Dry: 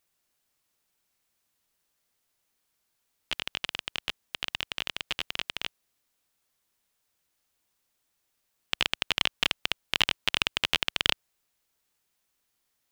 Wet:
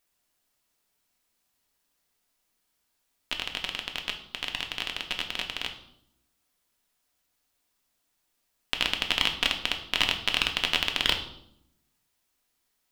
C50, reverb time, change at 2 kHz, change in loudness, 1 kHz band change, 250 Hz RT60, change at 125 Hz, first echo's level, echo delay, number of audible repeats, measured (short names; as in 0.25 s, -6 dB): 10.0 dB, 0.75 s, +1.5 dB, +1.5 dB, +2.0 dB, 1.1 s, +1.0 dB, none, none, none